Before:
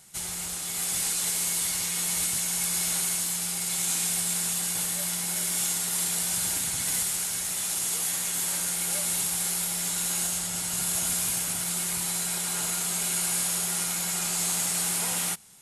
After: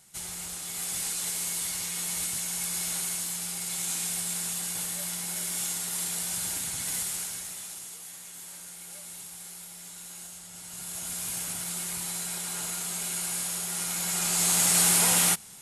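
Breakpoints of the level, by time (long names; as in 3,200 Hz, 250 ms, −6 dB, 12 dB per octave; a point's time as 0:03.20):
0:07.19 −4 dB
0:07.99 −15 dB
0:10.42 −15 dB
0:11.42 −4.5 dB
0:13.66 −4.5 dB
0:14.79 +6 dB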